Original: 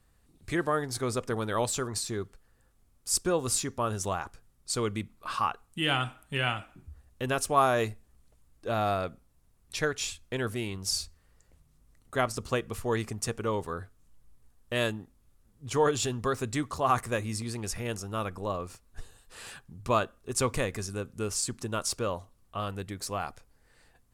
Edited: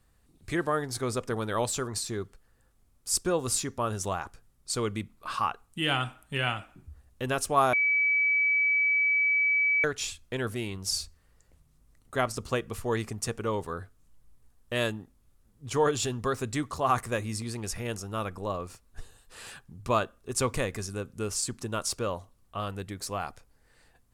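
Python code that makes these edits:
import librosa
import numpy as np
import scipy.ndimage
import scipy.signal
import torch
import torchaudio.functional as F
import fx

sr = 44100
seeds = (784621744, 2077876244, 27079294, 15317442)

y = fx.edit(x, sr, fx.bleep(start_s=7.73, length_s=2.11, hz=2290.0, db=-21.5), tone=tone)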